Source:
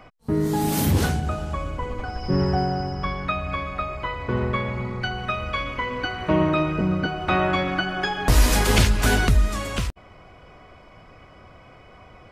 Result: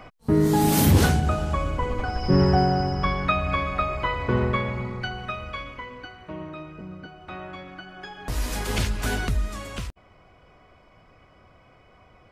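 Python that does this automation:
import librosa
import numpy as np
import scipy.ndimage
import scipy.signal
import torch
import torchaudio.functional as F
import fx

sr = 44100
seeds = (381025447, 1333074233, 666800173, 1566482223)

y = fx.gain(x, sr, db=fx.line((4.19, 3.0), (5.62, -7.5), (6.33, -16.5), (7.8, -16.5), (8.87, -7.0)))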